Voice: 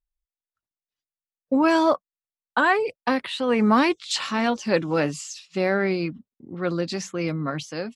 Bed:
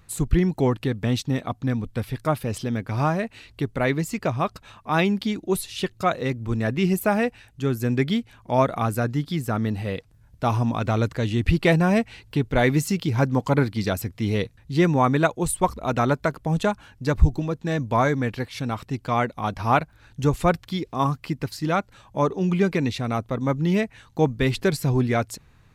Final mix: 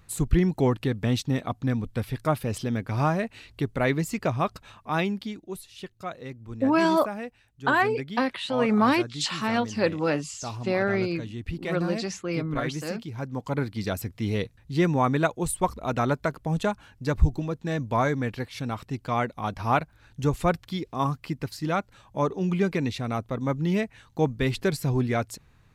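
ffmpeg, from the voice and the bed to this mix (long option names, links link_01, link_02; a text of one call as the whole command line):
ffmpeg -i stem1.wav -i stem2.wav -filter_complex "[0:a]adelay=5100,volume=-2.5dB[link_01];[1:a]volume=8dB,afade=type=out:start_time=4.59:duration=0.89:silence=0.266073,afade=type=in:start_time=13.21:duration=0.82:silence=0.334965[link_02];[link_01][link_02]amix=inputs=2:normalize=0" out.wav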